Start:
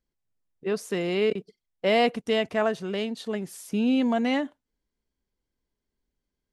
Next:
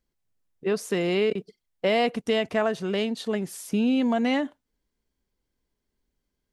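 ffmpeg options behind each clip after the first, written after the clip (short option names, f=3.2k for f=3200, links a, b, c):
-af "acompressor=threshold=-24dB:ratio=3,volume=3.5dB"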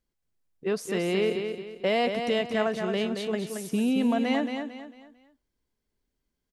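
-af "aecho=1:1:224|448|672|896:0.473|0.166|0.058|0.0203,volume=-2.5dB"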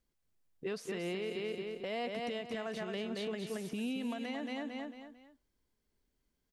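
-filter_complex "[0:a]acrossover=split=1700|4300[a][b][c];[a]acompressor=threshold=-34dB:ratio=4[d];[b]acompressor=threshold=-43dB:ratio=4[e];[c]acompressor=threshold=-56dB:ratio=4[f];[d][e][f]amix=inputs=3:normalize=0,alimiter=level_in=5.5dB:limit=-24dB:level=0:latency=1:release=186,volume=-5.5dB"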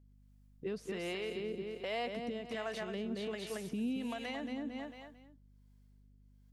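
-filter_complex "[0:a]acrossover=split=430[a][b];[a]aeval=exprs='val(0)*(1-0.7/2+0.7/2*cos(2*PI*1.3*n/s))':c=same[c];[b]aeval=exprs='val(0)*(1-0.7/2-0.7/2*cos(2*PI*1.3*n/s))':c=same[d];[c][d]amix=inputs=2:normalize=0,aeval=exprs='val(0)+0.000631*(sin(2*PI*50*n/s)+sin(2*PI*2*50*n/s)/2+sin(2*PI*3*50*n/s)/3+sin(2*PI*4*50*n/s)/4+sin(2*PI*5*50*n/s)/5)':c=same,volume=2.5dB"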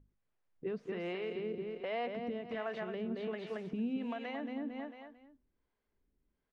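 -af "lowpass=2.2k,bandreject=f=50:t=h:w=6,bandreject=f=100:t=h:w=6,bandreject=f=150:t=h:w=6,bandreject=f=200:t=h:w=6,bandreject=f=250:t=h:w=6,volume=1dB"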